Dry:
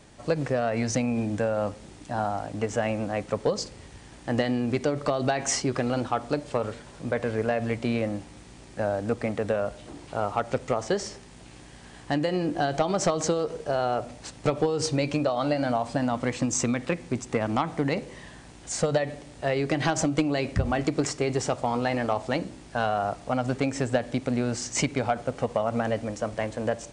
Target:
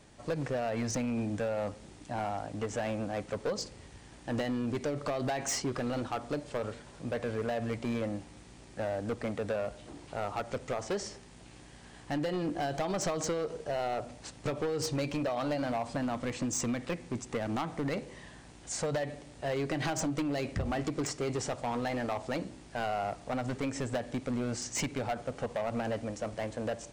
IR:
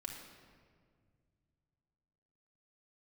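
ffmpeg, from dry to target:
-af "asoftclip=type=hard:threshold=0.075,volume=0.562"

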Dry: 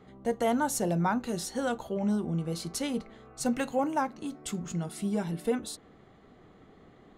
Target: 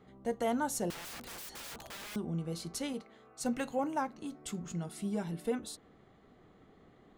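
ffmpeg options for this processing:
-filter_complex "[0:a]asettb=1/sr,asplit=3[s0][s1][s2];[s0]atrim=end=0.904[s3];[s1]atrim=start=0.9:end=2.16,asetpts=PTS-STARTPTS,afade=t=in:d=0.004:c=qsin,afade=t=out:st=1.256:d=0.004:c=qsin,aeval=exprs='(mod(59.6*val(0)+1,2)-1)/59.6':c=same[s4];[s2]atrim=start=2.156[s5];[s3][s4]acrossfade=d=0.004:c1=hsin:c2=qsin[s6];[s6][s5]acrossfade=d=0.004:c1=qsin:c2=hsin,asettb=1/sr,asplit=3[s7][s8][s9];[s7]atrim=end=2.934[s10];[s8]atrim=start=2.93:end=3.44,asetpts=PTS-STARTPTS,afade=t=in:d=0.004:c=qsin,afade=t=out:st=0.506:d=0.004:c=qsin,highpass=f=300:p=1[s11];[s9]atrim=start=3.436[s12];[s10][s11]acrossfade=d=0.004:c1=hsin:c2=qsin[s13];[s13][s12]acrossfade=d=0.004:c1=qsin:c2=hsin,volume=0.562"

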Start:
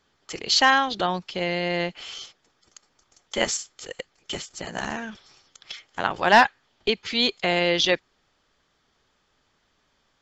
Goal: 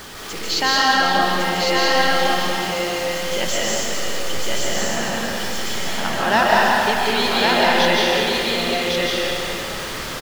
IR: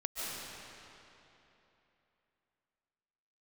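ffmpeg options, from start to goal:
-filter_complex "[0:a]aeval=exprs='val(0)+0.5*0.0422*sgn(val(0))':c=same,aecho=1:1:1105:0.708[s0];[1:a]atrim=start_sample=2205[s1];[s0][s1]afir=irnorm=-1:irlink=0,volume=0.891"

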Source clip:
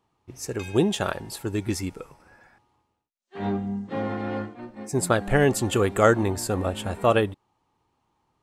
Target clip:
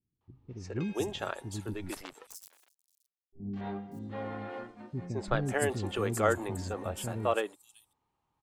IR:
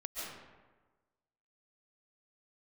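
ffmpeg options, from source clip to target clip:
-filter_complex "[0:a]asettb=1/sr,asplit=3[s0][s1][s2];[s0]atrim=end=1.714[s3];[s1]atrim=start=1.71:end=3.4,asetpts=PTS-STARTPTS,afade=t=in:d=0.004:c=qsin,afade=t=out:st=1.686:d=0.004:c=qsin,acrusher=bits=5:dc=4:mix=0:aa=0.000001[s4];[s2]atrim=start=3.396[s5];[s3][s4]acrossfade=d=0.004:c1=hsin:c2=qsin[s6];[s6][s5]acrossfade=d=0.004:c1=qsin:c2=hsin,acrossover=split=300|5400[s7][s8][s9];[s8]adelay=210[s10];[s9]adelay=590[s11];[s7][s10][s11]amix=inputs=3:normalize=0,volume=0.398"

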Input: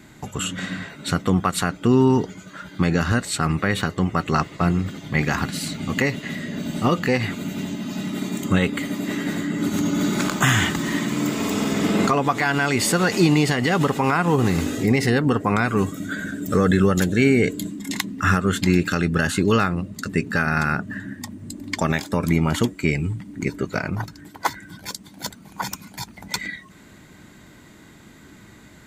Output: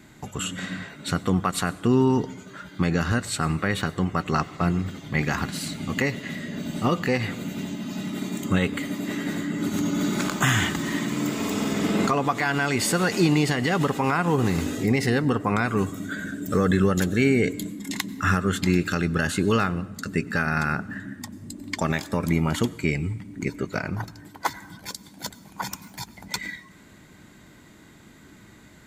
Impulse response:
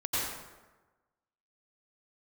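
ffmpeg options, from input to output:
-filter_complex "[0:a]asplit=2[s0][s1];[1:a]atrim=start_sample=2205,highshelf=f=7900:g=9[s2];[s1][s2]afir=irnorm=-1:irlink=0,volume=0.0398[s3];[s0][s3]amix=inputs=2:normalize=0,volume=0.668"

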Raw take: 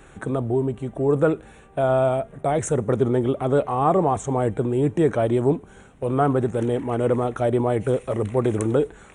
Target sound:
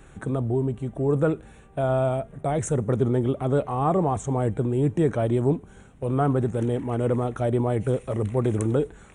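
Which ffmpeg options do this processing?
-af "bass=f=250:g=6,treble=f=4000:g=2,volume=0.596"

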